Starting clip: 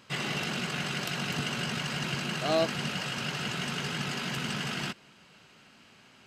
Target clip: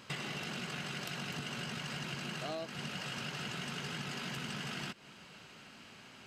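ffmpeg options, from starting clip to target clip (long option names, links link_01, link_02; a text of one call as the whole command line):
ffmpeg -i in.wav -af "acompressor=threshold=-40dB:ratio=10,volume=2.5dB" out.wav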